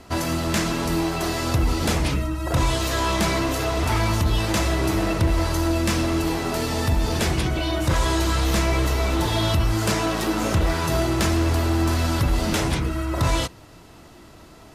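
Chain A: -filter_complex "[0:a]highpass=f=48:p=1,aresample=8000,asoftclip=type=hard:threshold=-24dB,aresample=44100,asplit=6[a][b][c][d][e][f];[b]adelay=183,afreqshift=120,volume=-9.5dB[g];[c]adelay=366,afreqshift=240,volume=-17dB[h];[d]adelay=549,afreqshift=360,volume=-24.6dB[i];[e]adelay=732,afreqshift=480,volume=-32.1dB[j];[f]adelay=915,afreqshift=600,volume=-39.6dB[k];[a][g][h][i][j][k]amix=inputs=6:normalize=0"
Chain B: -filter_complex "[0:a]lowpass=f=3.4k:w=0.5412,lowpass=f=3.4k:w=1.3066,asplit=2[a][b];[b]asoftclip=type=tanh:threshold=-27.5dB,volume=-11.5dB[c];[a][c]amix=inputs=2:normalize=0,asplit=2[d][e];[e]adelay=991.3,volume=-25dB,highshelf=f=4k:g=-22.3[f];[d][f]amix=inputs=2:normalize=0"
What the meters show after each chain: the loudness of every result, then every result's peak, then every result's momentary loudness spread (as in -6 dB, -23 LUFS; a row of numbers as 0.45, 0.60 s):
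-26.5, -22.5 LUFS; -17.0, -11.0 dBFS; 2, 3 LU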